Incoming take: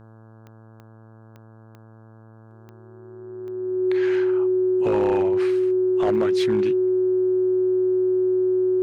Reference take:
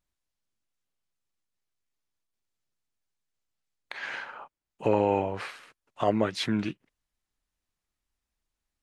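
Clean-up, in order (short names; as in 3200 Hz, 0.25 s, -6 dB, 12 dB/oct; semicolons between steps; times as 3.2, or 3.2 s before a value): clip repair -15 dBFS; de-click; de-hum 111.2 Hz, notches 15; notch 370 Hz, Q 30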